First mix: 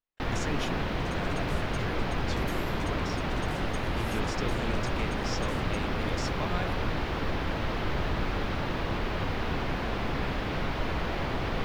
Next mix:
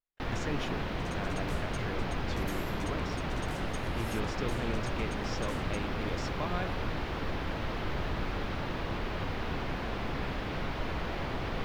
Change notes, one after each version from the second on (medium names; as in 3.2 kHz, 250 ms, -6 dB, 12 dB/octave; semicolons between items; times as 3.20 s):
speech: add treble shelf 4 kHz -9.5 dB; first sound -4.0 dB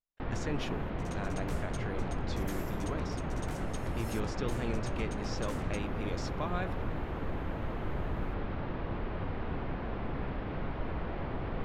first sound: add tape spacing loss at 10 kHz 37 dB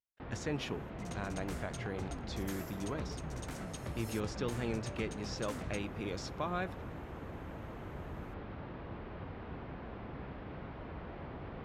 first sound -7.5 dB; master: add high-pass 52 Hz